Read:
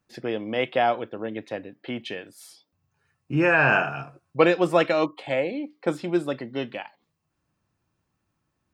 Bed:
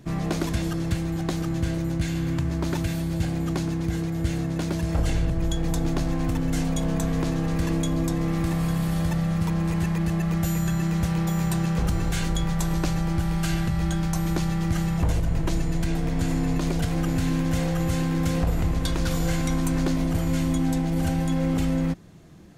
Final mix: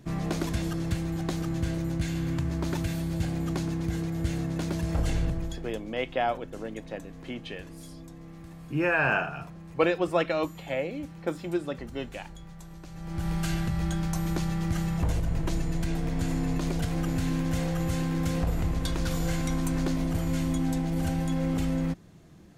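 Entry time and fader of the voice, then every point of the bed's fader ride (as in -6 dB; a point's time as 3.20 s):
5.40 s, -5.5 dB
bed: 5.29 s -3.5 dB
5.86 s -20.5 dB
12.87 s -20.5 dB
13.27 s -4 dB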